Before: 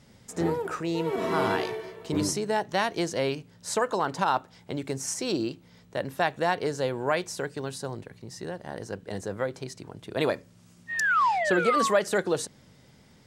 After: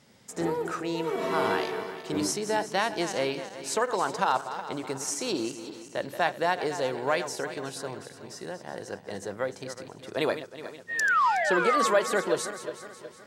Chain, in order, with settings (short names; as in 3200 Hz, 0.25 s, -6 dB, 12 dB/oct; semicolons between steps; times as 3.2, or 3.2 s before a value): regenerating reverse delay 0.184 s, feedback 65%, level -11 dB; HPF 270 Hz 6 dB/oct